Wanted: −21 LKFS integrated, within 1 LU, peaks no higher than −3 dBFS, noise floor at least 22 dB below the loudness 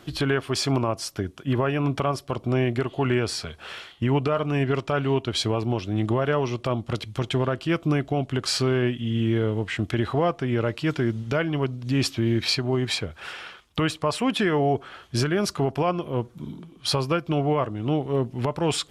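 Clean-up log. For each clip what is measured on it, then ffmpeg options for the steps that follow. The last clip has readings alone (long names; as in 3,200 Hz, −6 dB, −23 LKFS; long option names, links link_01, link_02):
integrated loudness −25.5 LKFS; sample peak −11.5 dBFS; target loudness −21.0 LKFS
→ -af "volume=4.5dB"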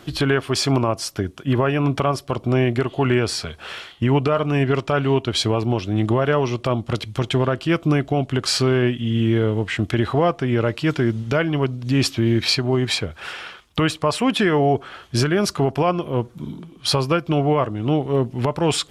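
integrated loudness −21.0 LKFS; sample peak −7.0 dBFS; background noise floor −47 dBFS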